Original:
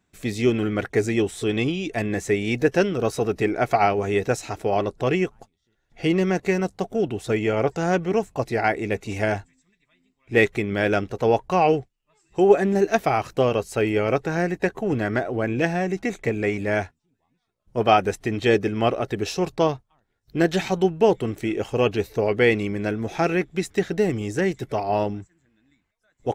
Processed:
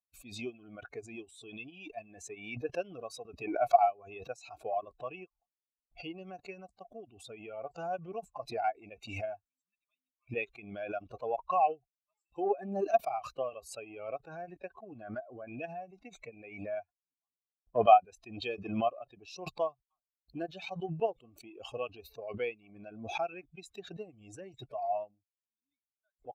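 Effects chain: per-bin expansion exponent 2; transient shaper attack +3 dB, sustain -5 dB; vowel filter a; backwards sustainer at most 67 dB/s

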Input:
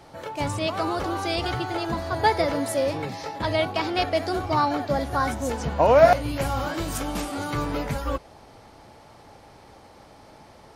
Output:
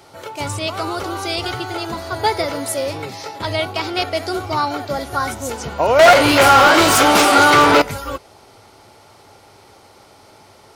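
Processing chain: bell 100 Hz +9 dB 0.35 oct; notch 1700 Hz, Q 12; 5.99–7.82 overdrive pedal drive 32 dB, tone 2000 Hz, clips at -3.5 dBFS; tilt +2 dB/oct; small resonant body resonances 390/1400 Hz, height 7 dB; gain +2.5 dB

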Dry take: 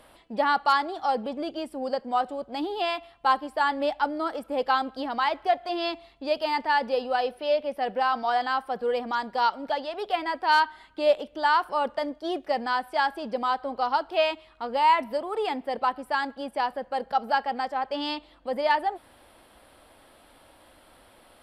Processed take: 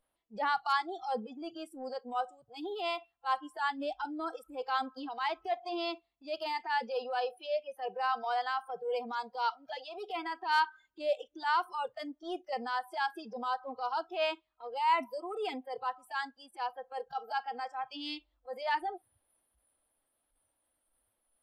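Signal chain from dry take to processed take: spectral noise reduction 24 dB; transient shaper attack -8 dB, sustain +1 dB; gain -5.5 dB

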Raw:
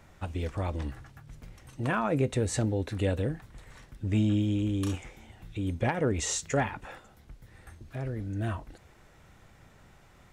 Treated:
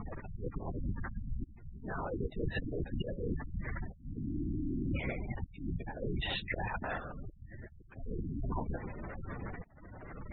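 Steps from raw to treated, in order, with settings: auto swell 0.723 s; LPC vocoder at 8 kHz whisper; reverse; compressor 16:1, threshold -47 dBFS, peak gain reduction 23.5 dB; reverse; spectral gate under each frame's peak -15 dB strong; gain +15.5 dB

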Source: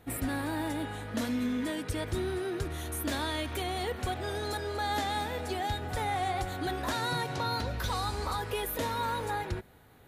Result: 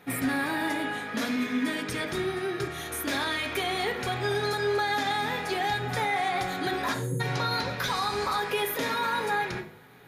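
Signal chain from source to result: 2.18–2.91 notch comb 500 Hz; 6.94–7.2 spectral delete 570–6300 Hz; reverb RT60 0.45 s, pre-delay 3 ms, DRR 4 dB; limiter -22 dBFS, peak gain reduction 5.5 dB; de-hum 51.45 Hz, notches 4; gain +3.5 dB

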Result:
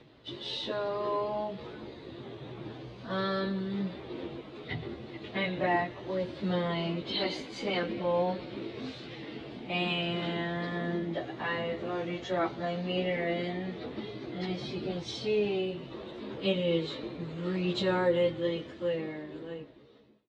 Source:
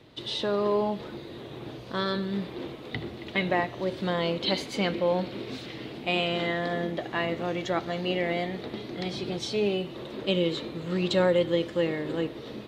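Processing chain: ending faded out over 1.36 s; plain phase-vocoder stretch 1.6×; air absorption 88 m

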